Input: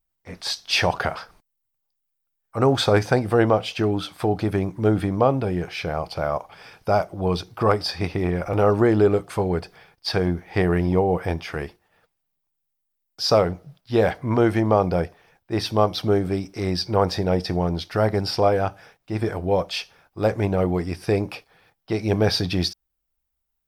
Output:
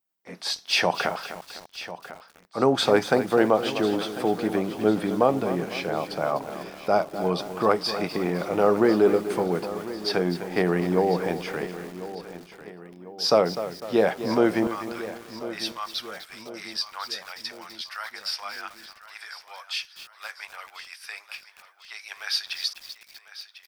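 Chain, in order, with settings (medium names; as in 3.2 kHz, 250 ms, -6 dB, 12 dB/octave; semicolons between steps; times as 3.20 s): high-pass 170 Hz 24 dB/octave, from 14.67 s 1.3 kHz; feedback delay 1047 ms, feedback 48%, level -14.5 dB; bit-crushed delay 251 ms, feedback 55%, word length 6-bit, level -11 dB; trim -1.5 dB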